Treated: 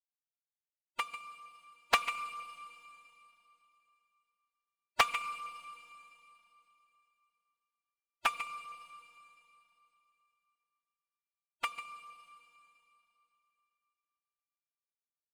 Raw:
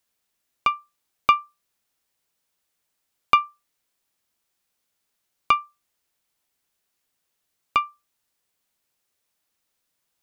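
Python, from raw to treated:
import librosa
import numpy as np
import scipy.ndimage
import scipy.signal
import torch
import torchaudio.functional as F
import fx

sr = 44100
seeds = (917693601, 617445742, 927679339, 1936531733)

p1 = scipy.ndimage.median_filter(x, 9, mode='constant')
p2 = fx.power_curve(p1, sr, exponent=2.0)
p3 = fx.stretch_vocoder(p2, sr, factor=1.5)
p4 = fx.tilt_shelf(p3, sr, db=-3.5, hz=1300.0)
p5 = p4 + fx.echo_single(p4, sr, ms=146, db=-12.0, dry=0)
p6 = fx.rev_schroeder(p5, sr, rt60_s=3.0, comb_ms=27, drr_db=9.0)
p7 = fx.doppler_dist(p6, sr, depth_ms=0.53)
y = p7 * 10.0 ** (-6.5 / 20.0)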